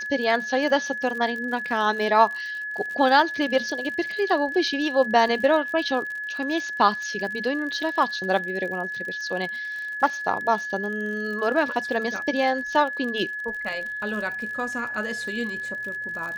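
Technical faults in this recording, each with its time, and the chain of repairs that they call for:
crackle 54/s -32 dBFS
tone 1700 Hz -29 dBFS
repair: de-click; notch 1700 Hz, Q 30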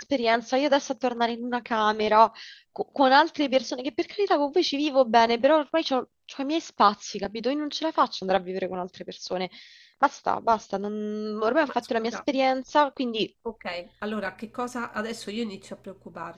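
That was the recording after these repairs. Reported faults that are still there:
none

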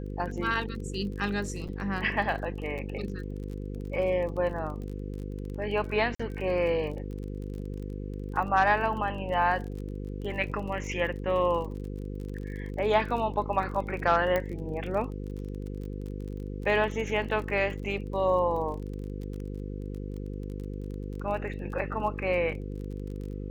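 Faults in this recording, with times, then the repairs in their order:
buzz 50 Hz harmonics 10 -36 dBFS
crackle 33/s -37 dBFS
1.68–1.69 gap 7.3 ms
6.15–6.2 gap 45 ms
14.36 pop -15 dBFS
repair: de-click; de-hum 50 Hz, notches 10; interpolate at 1.68, 7.3 ms; interpolate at 6.15, 45 ms

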